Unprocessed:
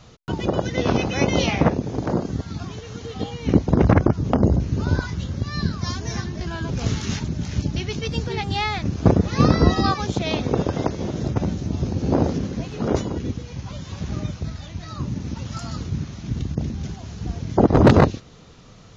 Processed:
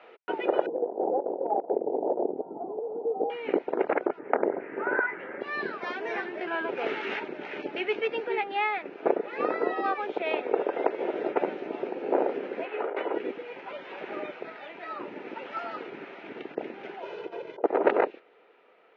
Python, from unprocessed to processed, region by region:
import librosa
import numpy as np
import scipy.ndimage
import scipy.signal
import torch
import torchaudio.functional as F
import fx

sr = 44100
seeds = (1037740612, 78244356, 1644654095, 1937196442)

y = fx.chain(x, sr, fx.steep_lowpass(hz=870.0, slope=48),
    fx.over_compress(threshold_db=-25.0, ratio=-0.5), at=(0.66, 3.3))
y = fx.chain(y, sr, fx.high_shelf_res(hz=2700.0, db=-12.5, q=3.0),
    fx.doppler_dist(depth_ms=0.23), at=(4.19, 5.41))
y = fx.chain(y, sr, fx.bandpass_edges(low_hz=240.0, high_hz=2800.0),
    fx.low_shelf(hz=370.0, db=-9.5),
    fx.over_compress(threshold_db=-33.0, ratio=-1.0), at=(12.65, 13.14))
y = fx.chain(y, sr, fx.peak_eq(hz=1900.0, db=-8.0, octaves=0.87),
    fx.comb(ms=2.0, depth=0.76),
    fx.over_compress(threshold_db=-27.0, ratio=-1.0), at=(17.02, 17.64))
y = scipy.signal.sosfilt(scipy.signal.ellip(3, 1.0, 60, [390.0, 2500.0], 'bandpass', fs=sr, output='sos'), y)
y = fx.notch(y, sr, hz=1100.0, q=5.4)
y = fx.rider(y, sr, range_db=5, speed_s=0.5)